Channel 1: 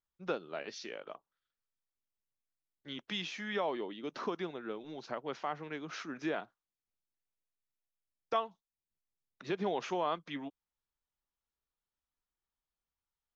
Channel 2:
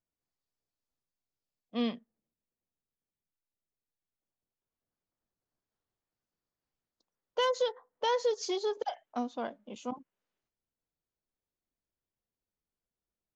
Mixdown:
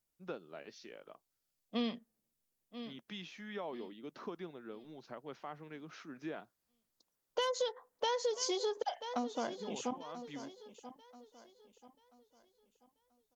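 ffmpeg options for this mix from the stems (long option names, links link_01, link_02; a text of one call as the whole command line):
ffmpeg -i stem1.wav -i stem2.wav -filter_complex "[0:a]lowshelf=frequency=360:gain=6.5,volume=-10dB[link_01];[1:a]aemphasis=mode=production:type=cd,volume=2dB,asplit=3[link_02][link_03][link_04];[link_03]volume=-16.5dB[link_05];[link_04]apad=whole_len=589030[link_06];[link_01][link_06]sidechaincompress=threshold=-40dB:ratio=8:attack=6.2:release=390[link_07];[link_05]aecho=0:1:985|1970|2955|3940|4925:1|0.34|0.116|0.0393|0.0134[link_08];[link_07][link_02][link_08]amix=inputs=3:normalize=0,acompressor=threshold=-33dB:ratio=3" out.wav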